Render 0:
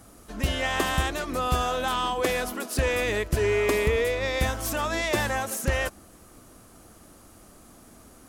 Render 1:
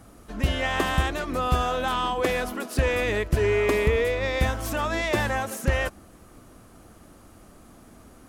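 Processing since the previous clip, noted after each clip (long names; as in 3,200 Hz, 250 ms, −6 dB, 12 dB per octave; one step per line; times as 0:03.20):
bass and treble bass +2 dB, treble −6 dB
level +1 dB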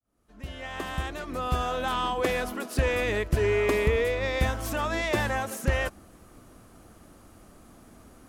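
fade in at the beginning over 2.01 s
level −2 dB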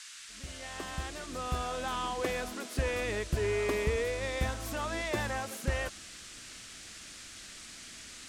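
noise in a band 1,300–8,700 Hz −42 dBFS
level −6.5 dB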